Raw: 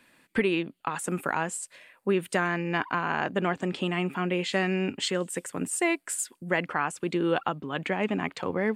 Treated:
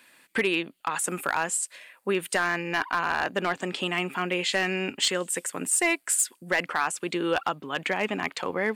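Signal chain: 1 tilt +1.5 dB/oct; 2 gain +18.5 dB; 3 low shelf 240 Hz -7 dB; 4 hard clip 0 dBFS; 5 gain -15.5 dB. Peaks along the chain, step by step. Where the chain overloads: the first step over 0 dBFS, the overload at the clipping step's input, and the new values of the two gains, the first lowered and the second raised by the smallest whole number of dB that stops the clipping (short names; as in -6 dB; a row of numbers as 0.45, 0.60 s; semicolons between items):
-11.0, +7.5, +7.5, 0.0, -15.5 dBFS; step 2, 7.5 dB; step 2 +10.5 dB, step 5 -7.5 dB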